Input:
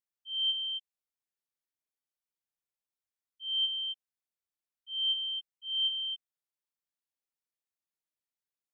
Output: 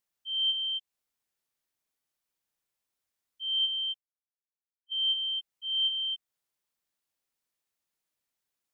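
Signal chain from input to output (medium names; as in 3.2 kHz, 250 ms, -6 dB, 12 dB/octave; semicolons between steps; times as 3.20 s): 3.59–4.92 s: expander -36 dBFS; in parallel at +3 dB: compression, threshold -44 dBFS, peak gain reduction 16 dB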